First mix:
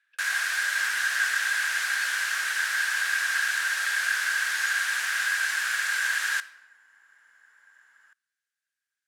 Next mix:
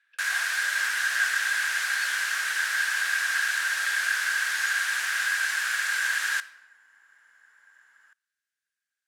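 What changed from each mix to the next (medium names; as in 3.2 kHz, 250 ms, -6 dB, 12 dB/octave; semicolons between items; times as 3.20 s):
speech: send on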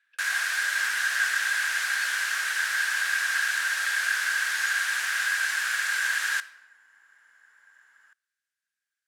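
speech: send -10.5 dB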